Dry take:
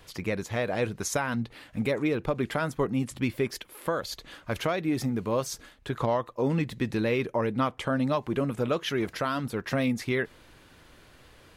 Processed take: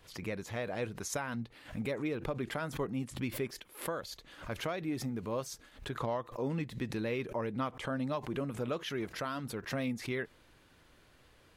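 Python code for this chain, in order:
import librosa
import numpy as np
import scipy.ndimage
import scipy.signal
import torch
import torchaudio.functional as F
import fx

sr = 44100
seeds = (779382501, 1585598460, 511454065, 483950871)

y = fx.pre_swell(x, sr, db_per_s=140.0)
y = y * librosa.db_to_amplitude(-8.5)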